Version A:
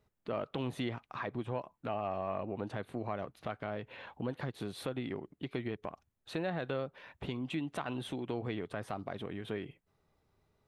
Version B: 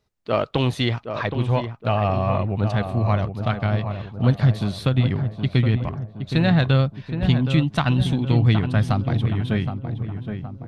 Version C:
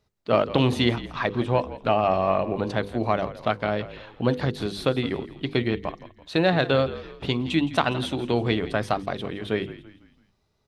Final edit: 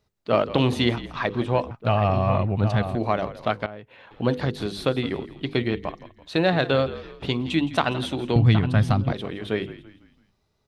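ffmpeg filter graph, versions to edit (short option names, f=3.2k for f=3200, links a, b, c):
-filter_complex "[1:a]asplit=2[a][b];[2:a]asplit=4[c][d][e][f];[c]atrim=end=1.712[g];[a]atrim=start=1.708:end=2.952[h];[d]atrim=start=2.948:end=3.662[i];[0:a]atrim=start=3.658:end=4.112[j];[e]atrim=start=4.108:end=8.362[k];[b]atrim=start=8.358:end=9.122[l];[f]atrim=start=9.118[m];[g][h]acrossfade=d=0.004:c1=hsin:c2=hsin[n];[n][i]acrossfade=d=0.004:c1=hsin:c2=hsin[o];[o][j]acrossfade=d=0.004:c1=hsin:c2=hsin[p];[p][k]acrossfade=d=0.004:c1=hsin:c2=hsin[q];[q][l]acrossfade=d=0.004:c1=hsin:c2=hsin[r];[r][m]acrossfade=d=0.004:c1=hsin:c2=hsin"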